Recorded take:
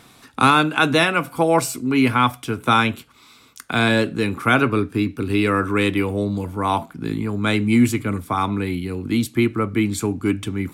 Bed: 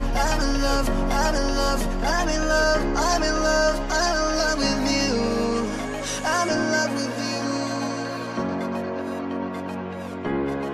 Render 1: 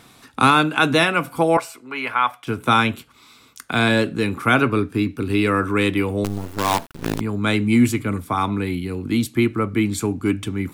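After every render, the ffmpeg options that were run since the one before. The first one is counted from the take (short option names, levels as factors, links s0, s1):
-filter_complex "[0:a]asettb=1/sr,asplit=3[s0][s1][s2];[s0]atrim=end=1.574[s3];[s1]atrim=start=1.57:end=2.47,asetpts=PTS-STARTPTS,afade=t=in:d=0.004:c=qsin,afade=t=out:st=0.896:d=0.004:c=qsin,acrossover=split=530 3000:gain=0.0708 1 0.251[s4][s5][s6];[s4][s5][s6]amix=inputs=3:normalize=0[s7];[s2]atrim=start=2.466[s8];[s3][s7]acrossfade=d=0.004:c1=hsin:c2=qsin[s9];[s9][s8]acrossfade=d=0.004:c1=qsin:c2=hsin,asettb=1/sr,asplit=3[s10][s11][s12];[s10]atrim=end=6.244[s13];[s11]atrim=start=6.24:end=7.21,asetpts=PTS-STARTPTS,afade=t=in:d=0.004:c=qsin,afade=t=out:st=0.966:d=0.004:c=qsin,acrusher=bits=4:dc=4:mix=0:aa=0.000001[s14];[s12]atrim=start=7.206[s15];[s13][s14]acrossfade=d=0.004:c1=hsin:c2=qsin[s16];[s16][s15]acrossfade=d=0.004:c1=qsin:c2=hsin"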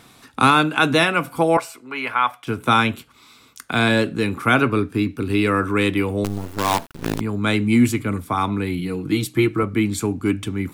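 -filter_complex "[0:a]asettb=1/sr,asplit=3[s0][s1][s2];[s0]atrim=end=8.784[s3];[s1]atrim=start=8.78:end=9.63,asetpts=PTS-STARTPTS,afade=t=in:d=0.004:c=qsin,afade=t=out:st=0.846:d=0.004:c=qsin,aecho=1:1:6.3:0.65,atrim=end_sample=37485[s4];[s2]atrim=start=9.626[s5];[s3][s4]acrossfade=d=0.004:c1=hsin:c2=qsin[s6];[s6][s5]acrossfade=d=0.004:c1=qsin:c2=hsin"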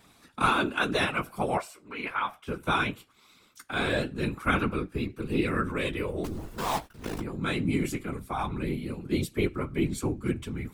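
-af "flanger=delay=7.7:depth=8.6:regen=29:speed=0.21:shape=triangular,afftfilt=real='hypot(re,im)*cos(2*PI*random(0))':imag='hypot(re,im)*sin(2*PI*random(1))':win_size=512:overlap=0.75"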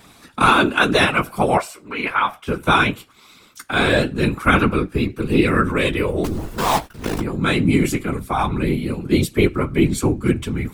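-af "volume=3.55,alimiter=limit=0.794:level=0:latency=1"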